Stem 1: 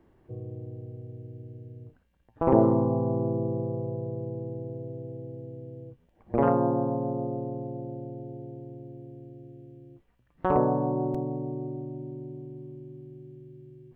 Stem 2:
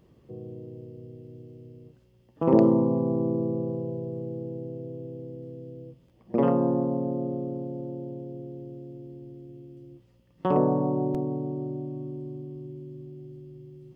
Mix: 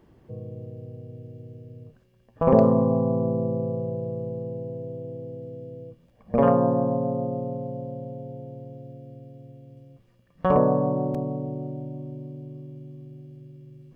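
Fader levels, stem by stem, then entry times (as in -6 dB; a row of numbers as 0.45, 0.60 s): +2.5, -1.5 dB; 0.00, 0.00 s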